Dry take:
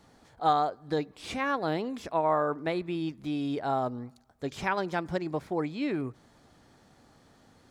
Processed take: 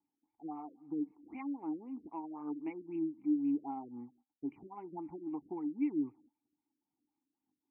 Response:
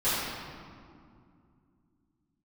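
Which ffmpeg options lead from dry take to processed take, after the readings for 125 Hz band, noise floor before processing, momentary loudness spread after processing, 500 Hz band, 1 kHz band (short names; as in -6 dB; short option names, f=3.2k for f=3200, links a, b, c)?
-19.5 dB, -61 dBFS, 13 LU, -17.0 dB, -18.0 dB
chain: -filter_complex "[0:a]agate=range=-21dB:threshold=-55dB:ratio=16:detection=peak,acompressor=threshold=-28dB:ratio=10,aphaser=in_gain=1:out_gain=1:delay=3.9:decay=0.37:speed=2:type=sinusoidal,asplit=3[a][b][c];[a]bandpass=f=300:t=q:w=8,volume=0dB[d];[b]bandpass=f=870:t=q:w=8,volume=-6dB[e];[c]bandpass=f=2.24k:t=q:w=8,volume=-9dB[f];[d][e][f]amix=inputs=3:normalize=0,afftfilt=real='re*lt(b*sr/1024,580*pow(3100/580,0.5+0.5*sin(2*PI*3.8*pts/sr)))':imag='im*lt(b*sr/1024,580*pow(3100/580,0.5+0.5*sin(2*PI*3.8*pts/sr)))':win_size=1024:overlap=0.75,volume=1dB"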